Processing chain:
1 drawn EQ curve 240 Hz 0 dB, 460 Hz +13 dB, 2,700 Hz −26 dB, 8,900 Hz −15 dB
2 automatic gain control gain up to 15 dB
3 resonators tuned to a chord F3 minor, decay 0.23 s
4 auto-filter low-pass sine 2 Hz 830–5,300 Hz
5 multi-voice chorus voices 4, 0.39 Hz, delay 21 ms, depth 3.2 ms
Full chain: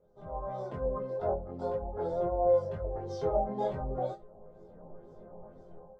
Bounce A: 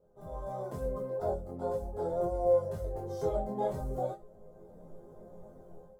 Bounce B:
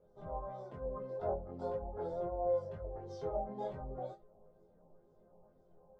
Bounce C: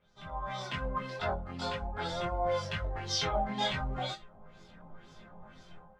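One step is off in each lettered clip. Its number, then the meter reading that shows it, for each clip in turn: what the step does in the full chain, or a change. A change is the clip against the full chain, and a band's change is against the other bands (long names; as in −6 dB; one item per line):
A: 4, change in integrated loudness −1.0 LU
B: 2, change in momentary loudness spread −13 LU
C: 1, 500 Hz band −8.0 dB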